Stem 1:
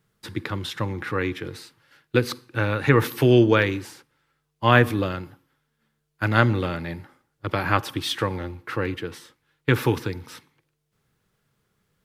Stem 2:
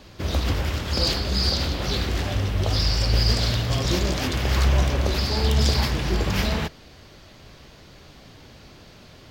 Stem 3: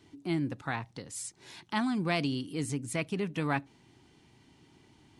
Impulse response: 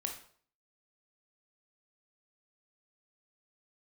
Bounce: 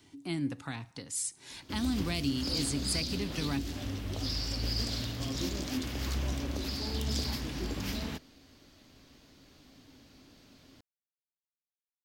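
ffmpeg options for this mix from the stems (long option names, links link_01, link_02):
-filter_complex "[1:a]adelay=1500,volume=-14.5dB[link_01];[2:a]equalizer=frequency=280:width=1.4:gain=-10,volume=-2.5dB,asplit=2[link_02][link_03];[link_03]volume=-13.5dB[link_04];[3:a]atrim=start_sample=2205[link_05];[link_04][link_05]afir=irnorm=-1:irlink=0[link_06];[link_01][link_02][link_06]amix=inputs=3:normalize=0,highshelf=frequency=3800:gain=8,acrossover=split=410|3000[link_07][link_08][link_09];[link_08]acompressor=threshold=-42dB:ratio=6[link_10];[link_07][link_10][link_09]amix=inputs=3:normalize=0,equalizer=frequency=270:width_type=o:width=0.41:gain=13.5"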